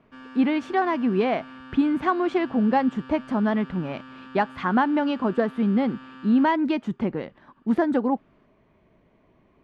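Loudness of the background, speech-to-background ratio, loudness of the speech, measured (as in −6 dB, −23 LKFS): −43.5 LKFS, 19.5 dB, −24.0 LKFS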